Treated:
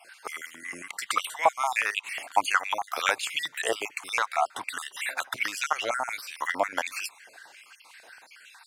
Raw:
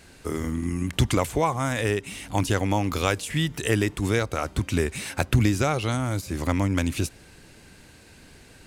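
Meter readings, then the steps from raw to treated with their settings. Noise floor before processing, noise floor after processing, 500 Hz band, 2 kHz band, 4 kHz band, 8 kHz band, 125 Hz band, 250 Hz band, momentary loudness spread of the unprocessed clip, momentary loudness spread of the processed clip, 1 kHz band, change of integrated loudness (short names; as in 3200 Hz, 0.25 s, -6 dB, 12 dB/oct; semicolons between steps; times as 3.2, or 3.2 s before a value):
-51 dBFS, -55 dBFS, -6.5 dB, +2.5 dB, 0.0 dB, -2.0 dB, under -35 dB, -22.5 dB, 6 LU, 13 LU, +2.5 dB, -3.5 dB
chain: random spectral dropouts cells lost 39%; stepped high-pass 11 Hz 680–2800 Hz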